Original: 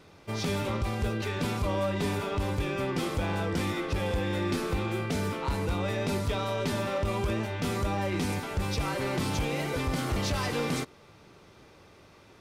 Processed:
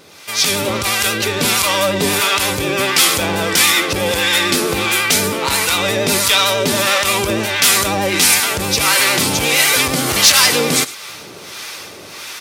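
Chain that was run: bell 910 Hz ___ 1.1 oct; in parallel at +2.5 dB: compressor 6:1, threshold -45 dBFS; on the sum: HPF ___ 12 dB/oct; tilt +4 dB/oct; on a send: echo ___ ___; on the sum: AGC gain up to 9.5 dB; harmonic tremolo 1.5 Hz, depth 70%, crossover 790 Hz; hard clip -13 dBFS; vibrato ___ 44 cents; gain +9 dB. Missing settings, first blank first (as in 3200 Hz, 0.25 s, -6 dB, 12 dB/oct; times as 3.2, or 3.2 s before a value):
-2.5 dB, 65 Hz, 0.107 s, -20.5 dB, 11 Hz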